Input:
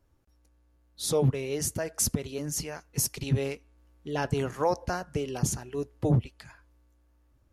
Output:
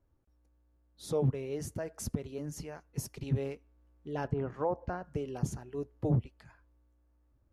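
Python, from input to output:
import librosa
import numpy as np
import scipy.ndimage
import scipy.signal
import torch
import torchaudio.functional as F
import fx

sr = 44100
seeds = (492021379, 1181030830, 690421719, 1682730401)

y = fx.env_lowpass_down(x, sr, base_hz=1200.0, full_db=-22.0, at=(4.27, 5.03), fade=0.02)
y = fx.high_shelf(y, sr, hz=2100.0, db=-12.0)
y = y * librosa.db_to_amplitude(-4.5)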